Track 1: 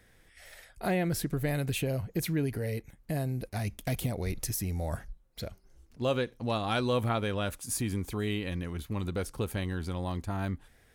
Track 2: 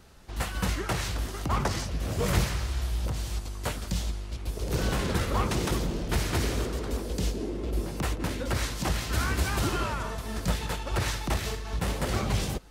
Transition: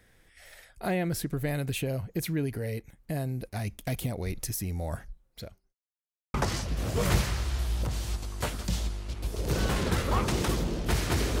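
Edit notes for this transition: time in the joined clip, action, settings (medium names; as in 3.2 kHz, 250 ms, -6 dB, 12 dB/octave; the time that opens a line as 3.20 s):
track 1
5.10–5.74 s: fade out equal-power
5.74–6.34 s: mute
6.34 s: go over to track 2 from 1.57 s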